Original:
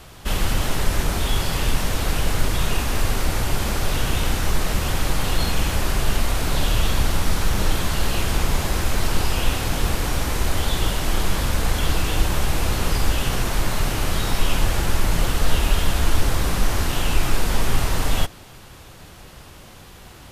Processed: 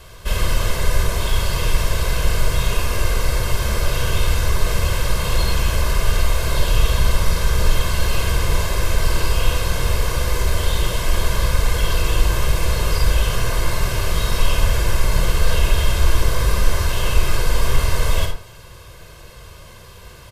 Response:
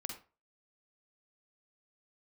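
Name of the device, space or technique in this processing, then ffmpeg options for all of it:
microphone above a desk: -filter_complex "[0:a]aecho=1:1:1.9:0.77[link_01];[1:a]atrim=start_sample=2205[link_02];[link_01][link_02]afir=irnorm=-1:irlink=0,volume=1dB"

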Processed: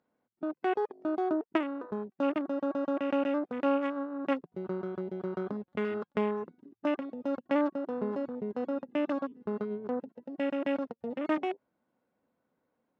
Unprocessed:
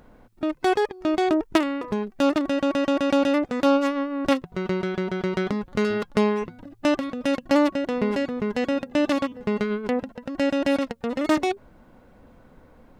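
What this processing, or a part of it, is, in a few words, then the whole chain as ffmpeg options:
over-cleaned archive recording: -af "highpass=190,lowpass=5700,afwtdn=0.0316,volume=-8dB"

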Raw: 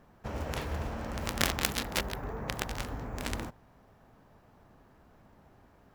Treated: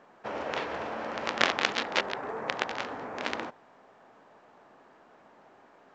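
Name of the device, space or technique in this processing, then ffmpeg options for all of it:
telephone: -af "highpass=380,lowpass=3600,volume=6.5dB" -ar 16000 -c:a pcm_mulaw

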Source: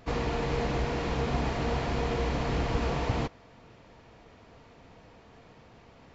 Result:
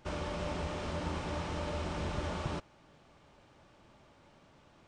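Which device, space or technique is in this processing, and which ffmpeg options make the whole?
nightcore: -af "asetrate=55566,aresample=44100,volume=-7.5dB"

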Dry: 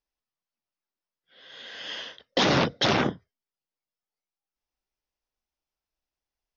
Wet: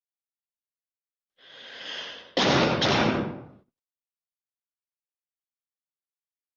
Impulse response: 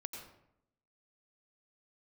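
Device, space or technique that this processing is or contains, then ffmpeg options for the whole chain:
speakerphone in a meeting room: -filter_complex "[1:a]atrim=start_sample=2205[link_01];[0:a][link_01]afir=irnorm=-1:irlink=0,dynaudnorm=framelen=340:gausssize=3:maxgain=8dB,agate=range=-37dB:threshold=-49dB:ratio=16:detection=peak,volume=-4.5dB" -ar 48000 -c:a libopus -b:a 32k

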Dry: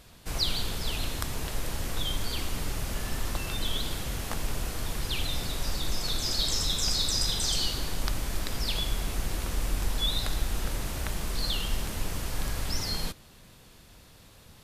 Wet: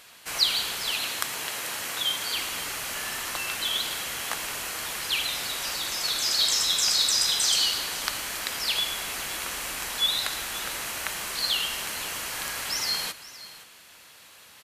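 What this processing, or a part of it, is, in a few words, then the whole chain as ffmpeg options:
filter by subtraction: -filter_complex "[0:a]bandreject=frequency=3600:width=17,asettb=1/sr,asplit=3[link_01][link_02][link_03];[link_01]atrim=end=0.924[link_04];[link_02]atrim=start=0.92:end=2.35,asetpts=PTS-STARTPTS,afade=type=in:duration=0.004:curve=qsin,afade=type=out:start_time=1.426:duration=0.004:curve=qsin,highpass=92[link_05];[link_03]atrim=start=2.346[link_06];[link_04][link_05]acrossfade=duration=0.004:curve1=hsin:curve2=qsin[link_07];[link_07][link_06]acrossfade=duration=0.004:curve1=qsin:curve2=hsin,equalizer=frequency=5000:width=4.1:gain=-3,asplit=2[link_08][link_09];[link_09]lowpass=1900,volume=-1[link_10];[link_08][link_10]amix=inputs=2:normalize=0,aecho=1:1:115|519:0.112|0.15,volume=6.5dB"

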